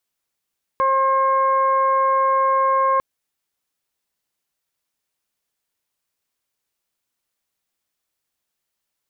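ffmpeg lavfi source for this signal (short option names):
-f lavfi -i "aevalsrc='0.0841*sin(2*PI*535*t)+0.168*sin(2*PI*1070*t)+0.0211*sin(2*PI*1605*t)+0.0119*sin(2*PI*2140*t)':d=2.2:s=44100"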